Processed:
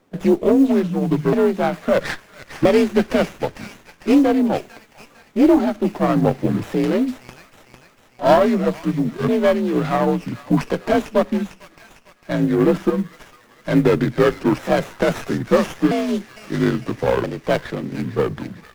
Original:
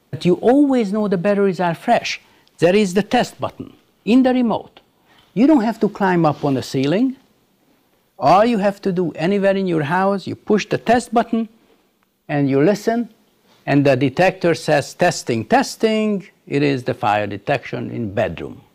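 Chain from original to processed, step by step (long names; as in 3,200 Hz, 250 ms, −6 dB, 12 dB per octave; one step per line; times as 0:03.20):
pitch shifter swept by a sawtooth −10 semitones, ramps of 1,326 ms
noise that follows the level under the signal 34 dB
delay with a high-pass on its return 451 ms, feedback 54%, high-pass 2,500 Hz, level −5 dB
frequency shifter +47 Hz
windowed peak hold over 9 samples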